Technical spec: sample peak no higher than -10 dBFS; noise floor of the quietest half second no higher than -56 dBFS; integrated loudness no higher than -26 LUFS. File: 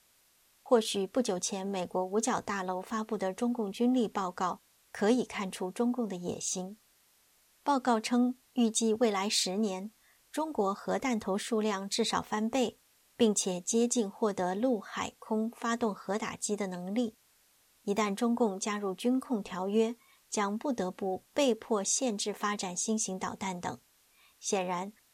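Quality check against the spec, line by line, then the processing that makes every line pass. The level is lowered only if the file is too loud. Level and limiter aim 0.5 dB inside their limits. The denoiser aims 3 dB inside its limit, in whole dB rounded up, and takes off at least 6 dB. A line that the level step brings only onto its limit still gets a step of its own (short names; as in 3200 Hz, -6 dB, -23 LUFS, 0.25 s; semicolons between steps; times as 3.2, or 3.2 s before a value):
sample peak -12.5 dBFS: OK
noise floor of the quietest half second -67 dBFS: OK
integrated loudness -32.0 LUFS: OK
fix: none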